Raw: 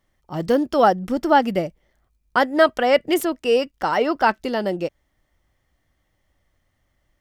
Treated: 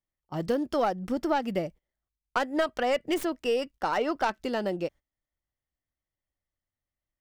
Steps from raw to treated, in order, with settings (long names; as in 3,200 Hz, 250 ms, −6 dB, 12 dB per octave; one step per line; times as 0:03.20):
stylus tracing distortion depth 0.071 ms
noise gate −38 dBFS, range −18 dB
downward compressor, threshold −17 dBFS, peak gain reduction 8 dB
level −5.5 dB